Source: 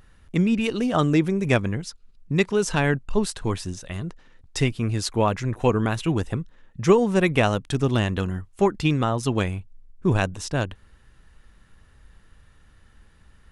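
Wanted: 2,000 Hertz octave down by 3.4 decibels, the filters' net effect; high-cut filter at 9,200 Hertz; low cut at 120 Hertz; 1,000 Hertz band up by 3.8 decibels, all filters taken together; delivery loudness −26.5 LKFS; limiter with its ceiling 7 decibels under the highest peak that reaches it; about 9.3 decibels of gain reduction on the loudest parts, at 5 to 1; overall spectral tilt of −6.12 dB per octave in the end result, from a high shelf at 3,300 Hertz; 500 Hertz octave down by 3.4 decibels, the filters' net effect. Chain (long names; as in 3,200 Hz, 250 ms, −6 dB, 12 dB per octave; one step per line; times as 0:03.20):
high-pass filter 120 Hz
low-pass filter 9,200 Hz
parametric band 500 Hz −6 dB
parametric band 1,000 Hz +8.5 dB
parametric band 2,000 Hz −5 dB
high-shelf EQ 3,300 Hz −6.5 dB
downward compressor 5 to 1, threshold −24 dBFS
level +5 dB
brickwall limiter −14 dBFS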